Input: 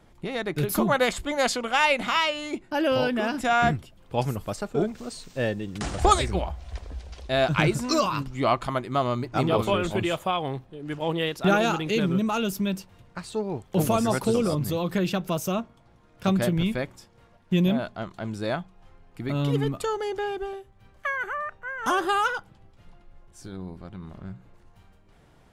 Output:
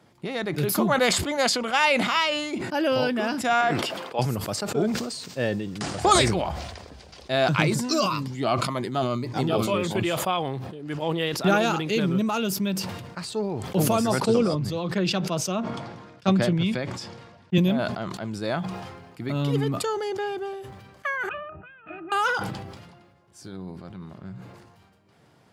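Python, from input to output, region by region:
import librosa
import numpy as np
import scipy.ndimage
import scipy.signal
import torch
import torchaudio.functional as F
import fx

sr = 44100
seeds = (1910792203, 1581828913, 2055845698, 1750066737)

y = fx.chain(x, sr, fx.highpass(hz=440.0, slope=12),
    fx.high_shelf(hz=5500.0, db=-10.5), at=(3.61, 4.19))
y = fx.chain(y, sr, fx.highpass(hz=100.0, slope=12),
    fx.notch_cascade(direction='falling', hz=1.9), at=(7.62, 9.95))
y = fx.chain(y, sr, fx.lowpass(hz=6700.0, slope=12),
    fx.band_widen(depth_pct=100), at=(14.2, 17.58))
y = fx.chain(y, sr, fx.self_delay(depth_ms=0.46),
    fx.steep_lowpass(hz=2800.0, slope=36),
    fx.octave_resonator(note='D#', decay_s=0.12), at=(21.29, 22.12))
y = scipy.signal.sosfilt(scipy.signal.butter(4, 99.0, 'highpass', fs=sr, output='sos'), y)
y = fx.peak_eq(y, sr, hz=4800.0, db=5.5, octaves=0.28)
y = fx.sustainer(y, sr, db_per_s=42.0)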